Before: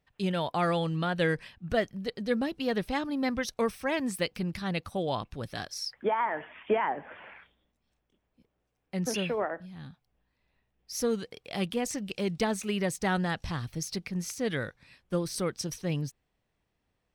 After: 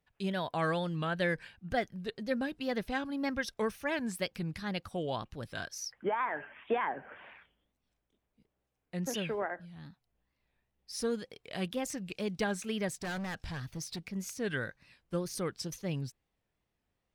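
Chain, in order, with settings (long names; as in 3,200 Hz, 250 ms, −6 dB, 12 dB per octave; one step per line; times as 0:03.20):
tape wow and flutter 130 cents
dynamic equaliser 1,600 Hz, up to +8 dB, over −55 dBFS, Q 7.9
0:12.88–0:14.09: gain into a clipping stage and back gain 30.5 dB
level −4.5 dB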